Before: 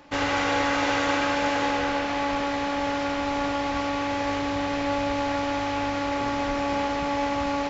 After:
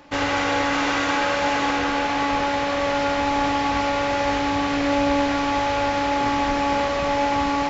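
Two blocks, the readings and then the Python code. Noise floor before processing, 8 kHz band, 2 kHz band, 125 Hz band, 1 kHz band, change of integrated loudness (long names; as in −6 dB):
−28 dBFS, can't be measured, +4.0 dB, +3.5 dB, +5.0 dB, +4.0 dB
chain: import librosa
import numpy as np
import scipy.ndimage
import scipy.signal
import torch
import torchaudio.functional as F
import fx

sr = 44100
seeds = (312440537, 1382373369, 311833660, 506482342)

p1 = fx.rider(x, sr, range_db=10, speed_s=2.0)
p2 = p1 + fx.echo_single(p1, sr, ms=596, db=-6.5, dry=0)
y = p2 * 10.0 ** (3.5 / 20.0)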